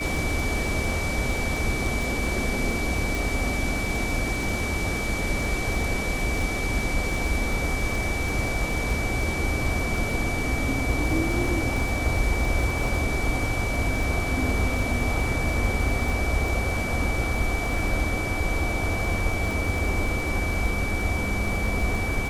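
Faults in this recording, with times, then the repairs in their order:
crackle 34/s -29 dBFS
tone 2300 Hz -30 dBFS
3.15 pop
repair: de-click; notch 2300 Hz, Q 30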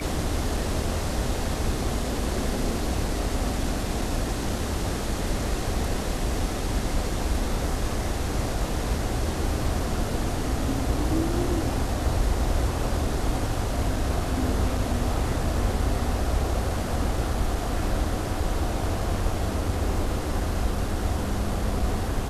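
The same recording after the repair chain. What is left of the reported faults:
none

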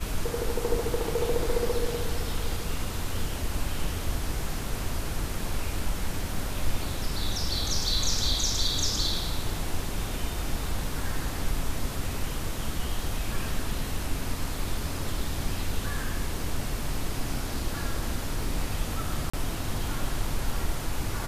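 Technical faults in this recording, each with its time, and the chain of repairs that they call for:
19.3–19.34 gap 35 ms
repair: interpolate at 19.3, 35 ms

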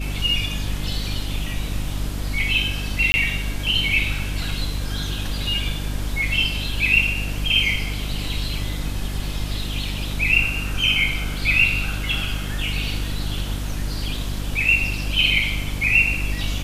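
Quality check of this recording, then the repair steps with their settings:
hum 50 Hz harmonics 6 -27 dBFS
3.12–3.14 gap 20 ms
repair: de-hum 50 Hz, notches 6; interpolate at 3.12, 20 ms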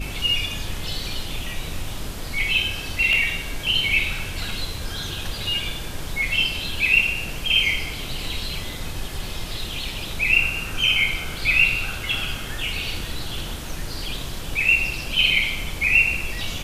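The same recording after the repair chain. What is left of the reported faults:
none

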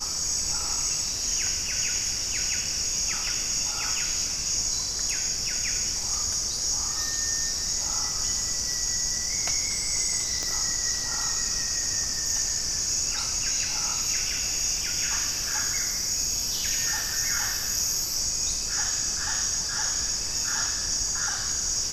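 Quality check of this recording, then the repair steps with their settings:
10.43 pop -17 dBFS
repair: de-click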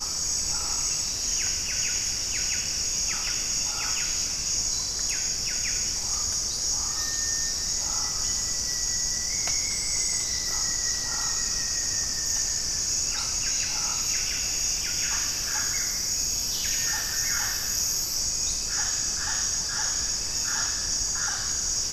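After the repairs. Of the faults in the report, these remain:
10.43 pop

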